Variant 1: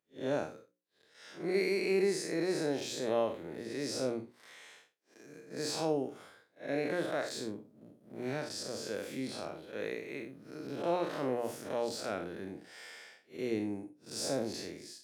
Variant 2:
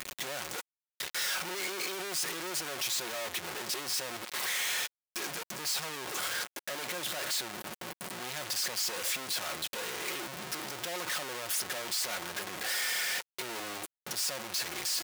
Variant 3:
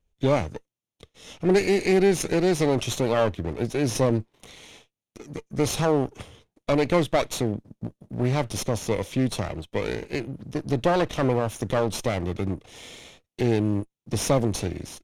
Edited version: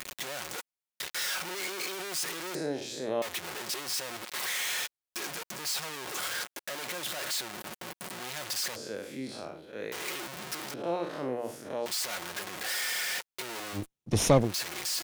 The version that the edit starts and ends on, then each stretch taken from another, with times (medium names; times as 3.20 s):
2
2.55–3.22 s: from 1
8.76–9.92 s: from 1
10.74–11.86 s: from 1
13.80–14.46 s: from 3, crossfade 0.16 s